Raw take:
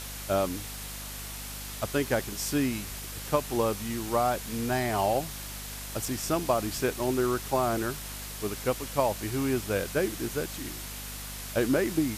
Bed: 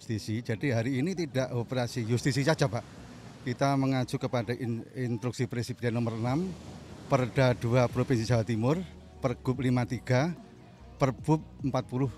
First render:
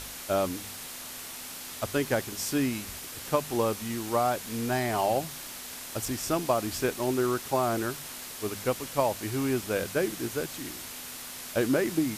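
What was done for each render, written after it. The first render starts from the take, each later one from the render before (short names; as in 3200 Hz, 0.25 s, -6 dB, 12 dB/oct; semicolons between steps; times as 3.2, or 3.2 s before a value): de-hum 50 Hz, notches 4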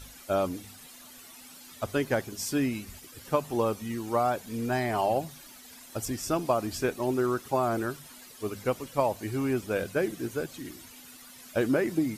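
denoiser 13 dB, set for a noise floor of -41 dBFS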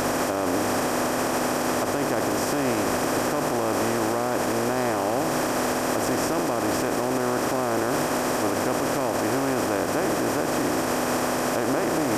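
per-bin compression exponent 0.2; limiter -15 dBFS, peak gain reduction 10 dB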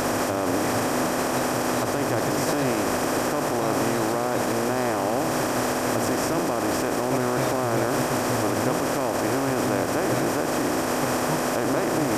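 add bed -5.5 dB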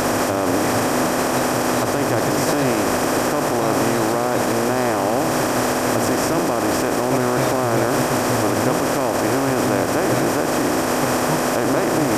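gain +5 dB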